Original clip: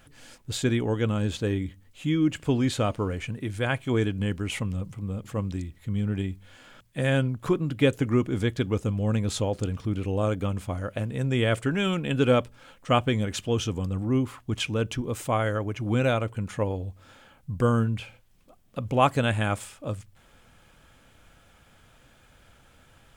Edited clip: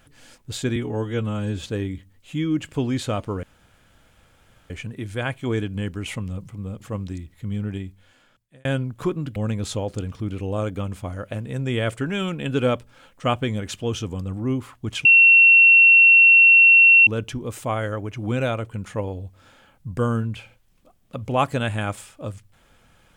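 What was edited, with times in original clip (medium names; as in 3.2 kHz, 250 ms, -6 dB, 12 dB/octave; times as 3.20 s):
0.76–1.34 s: stretch 1.5×
3.14 s: insert room tone 1.27 s
6.06–7.09 s: fade out
7.80–9.01 s: delete
14.70 s: add tone 2.72 kHz -8.5 dBFS 2.02 s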